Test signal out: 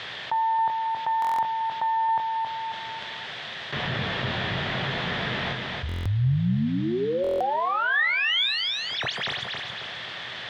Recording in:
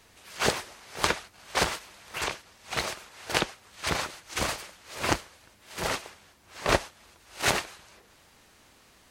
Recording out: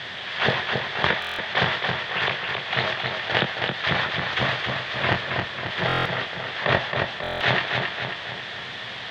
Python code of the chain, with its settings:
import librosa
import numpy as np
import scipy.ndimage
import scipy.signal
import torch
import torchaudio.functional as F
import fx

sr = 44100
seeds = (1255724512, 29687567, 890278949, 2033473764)

y = fx.tracing_dist(x, sr, depth_ms=0.085)
y = fx.dynamic_eq(y, sr, hz=140.0, q=0.72, threshold_db=-44.0, ratio=4.0, max_db=6)
y = fx.doubler(y, sr, ms=22.0, db=-9.5)
y = fx.quant_dither(y, sr, seeds[0], bits=8, dither='triangular')
y = fx.cabinet(y, sr, low_hz=110.0, low_slope=12, high_hz=3700.0, hz=(120.0, 290.0, 680.0, 1800.0, 3400.0), db=(8, -7, 4, 9, 9))
y = fx.echo_feedback(y, sr, ms=271, feedback_pct=35, wet_db=-8)
y = fx.buffer_glitch(y, sr, at_s=(1.2, 5.87, 7.22), block=1024, repeats=7)
y = fx.env_flatten(y, sr, amount_pct=50)
y = F.gain(torch.from_numpy(y), -2.0).numpy()